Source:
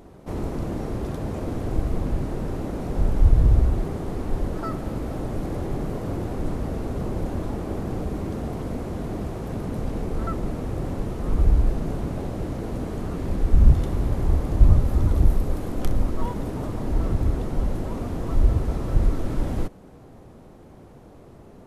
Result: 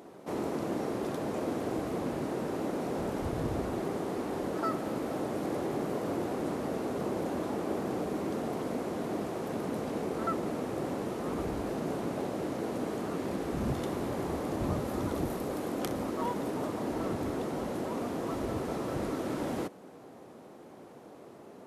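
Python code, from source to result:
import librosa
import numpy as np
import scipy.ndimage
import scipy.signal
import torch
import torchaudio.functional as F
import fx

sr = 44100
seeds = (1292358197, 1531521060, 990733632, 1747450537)

y = scipy.signal.sosfilt(scipy.signal.butter(2, 260.0, 'highpass', fs=sr, output='sos'), x)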